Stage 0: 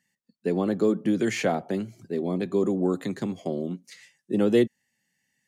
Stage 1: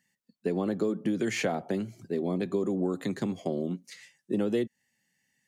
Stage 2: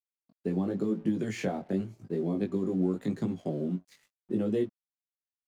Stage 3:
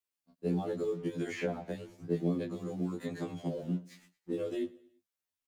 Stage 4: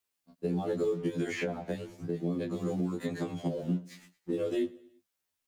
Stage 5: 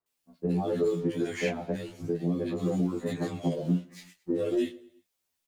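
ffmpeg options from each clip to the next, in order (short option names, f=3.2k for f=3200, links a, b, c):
-af "acompressor=threshold=-25dB:ratio=4"
-af "lowshelf=f=460:g=10.5,aeval=exprs='sgn(val(0))*max(abs(val(0))-0.00316,0)':c=same,flanger=delay=18:depth=3.9:speed=0.91,volume=-4.5dB"
-filter_complex "[0:a]acrossover=split=350|2600[a][b][c];[a]acompressor=threshold=-40dB:ratio=4[d];[b]acompressor=threshold=-40dB:ratio=4[e];[c]acompressor=threshold=-57dB:ratio=4[f];[d][e][f]amix=inputs=3:normalize=0,aecho=1:1:112|224|336:0.0841|0.037|0.0163,afftfilt=real='re*2*eq(mod(b,4),0)':imag='im*2*eq(mod(b,4),0)':win_size=2048:overlap=0.75,volume=6dB"
-af "alimiter=level_in=4.5dB:limit=-24dB:level=0:latency=1:release=369,volume=-4.5dB,volume=6.5dB"
-filter_complex "[0:a]flanger=delay=5.9:depth=4.9:regen=-43:speed=1.1:shape=triangular,acrossover=split=1500[a][b];[b]adelay=60[c];[a][c]amix=inputs=2:normalize=0,volume=7.5dB"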